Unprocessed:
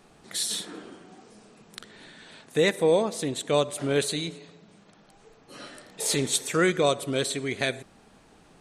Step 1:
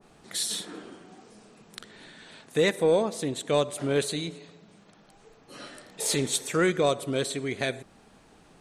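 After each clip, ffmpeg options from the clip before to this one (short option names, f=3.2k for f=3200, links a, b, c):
-af "acontrast=69,adynamicequalizer=threshold=0.0224:dfrequency=1500:dqfactor=0.7:tfrequency=1500:tqfactor=0.7:attack=5:release=100:ratio=0.375:range=1.5:mode=cutabove:tftype=highshelf,volume=-7dB"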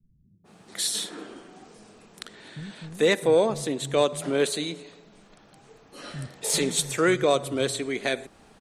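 -filter_complex "[0:a]acrossover=split=160[a][b];[b]adelay=440[c];[a][c]amix=inputs=2:normalize=0,volume=2.5dB"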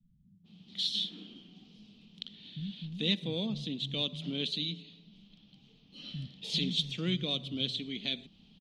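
-af "firequalizer=gain_entry='entry(130,0);entry(180,9);entry(380,-12);entry(580,-15);entry(1600,-19);entry(3100,11);entry(8100,-24);entry(13000,-26)':delay=0.05:min_phase=1,volume=-6.5dB"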